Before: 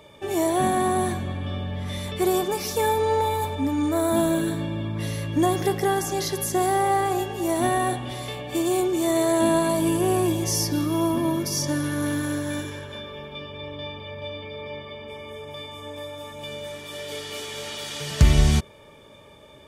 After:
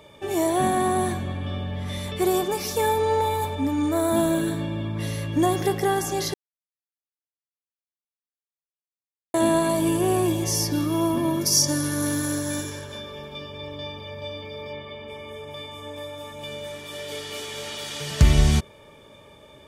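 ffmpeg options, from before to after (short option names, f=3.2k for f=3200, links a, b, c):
-filter_complex "[0:a]asettb=1/sr,asplit=3[a][b][c];[a]atrim=end=11.414[d];[b]atrim=start=11.41:end=14.73,asetpts=PTS-STARTPTS,afade=t=in:d=0.004:c=qsin,afade=t=out:st=3.316:d=0.004:c=qsin,highshelf=f=4k:t=q:w=1.5:g=7[e];[c]atrim=start=14.726[f];[d][e]acrossfade=d=0.004:c1=hsin:c2=qsin[g];[g][f]acrossfade=d=0.004:c1=qsin:c2=hsin,asplit=3[h][i][j];[h]atrim=end=6.34,asetpts=PTS-STARTPTS,afade=t=out:st=6.336:d=0.004:c=hsin[k];[i]atrim=start=6.34:end=9.34,asetpts=PTS-STARTPTS,volume=0[l];[j]atrim=start=9.34,asetpts=PTS-STARTPTS,afade=t=in:d=0.004:c=hsin[m];[k][l][m]concat=n=3:v=0:a=1"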